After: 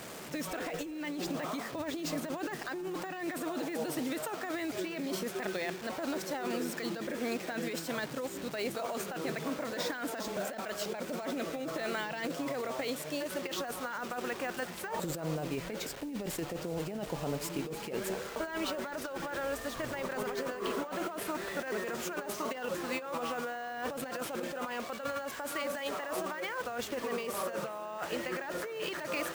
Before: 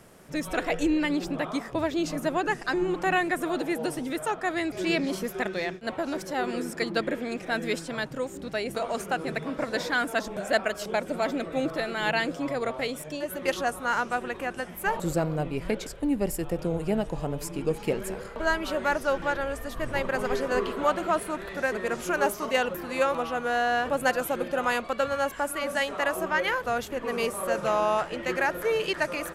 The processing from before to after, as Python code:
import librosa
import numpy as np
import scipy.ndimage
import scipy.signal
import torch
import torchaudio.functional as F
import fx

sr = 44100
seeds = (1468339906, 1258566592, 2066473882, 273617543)

p1 = fx.delta_mod(x, sr, bps=64000, step_db=-37.0)
p2 = fx.highpass(p1, sr, hz=190.0, slope=6)
p3 = fx.over_compress(p2, sr, threshold_db=-32.0, ratio=-1.0)
p4 = p3 + fx.echo_single(p3, sr, ms=379, db=-22.0, dry=0)
p5 = np.repeat(scipy.signal.resample_poly(p4, 1, 2), 2)[:len(p4)]
y = p5 * librosa.db_to_amplitude(-4.0)